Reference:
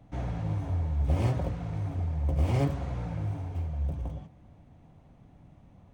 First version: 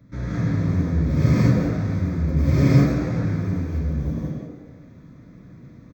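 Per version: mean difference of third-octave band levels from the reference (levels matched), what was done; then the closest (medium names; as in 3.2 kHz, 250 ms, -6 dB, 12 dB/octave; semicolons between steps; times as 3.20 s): 4.5 dB: high-pass 98 Hz 6 dB/octave; static phaser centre 2.9 kHz, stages 6; frequency-shifting echo 86 ms, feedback 54%, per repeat +79 Hz, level -9.5 dB; gated-style reverb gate 220 ms rising, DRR -7 dB; trim +6 dB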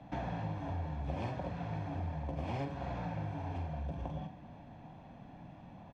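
6.5 dB: three-band isolator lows -15 dB, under 170 Hz, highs -22 dB, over 5.3 kHz; comb 1.2 ms, depth 43%; compression 6:1, threshold -43 dBFS, peak gain reduction 16 dB; flutter echo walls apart 7.8 m, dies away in 0.29 s; trim +7 dB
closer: first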